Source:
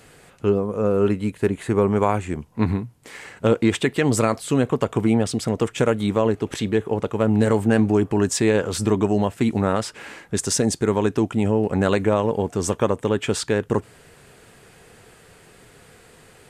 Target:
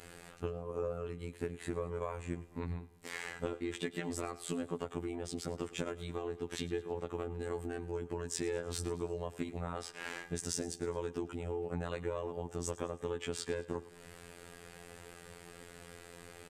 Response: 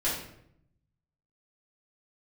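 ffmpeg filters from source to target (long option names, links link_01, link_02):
-af "acompressor=threshold=-32dB:ratio=6,afftfilt=real='hypot(re,im)*cos(PI*b)':imag='0':win_size=2048:overlap=0.75,aecho=1:1:107|214|321|428:0.126|0.0629|0.0315|0.0157"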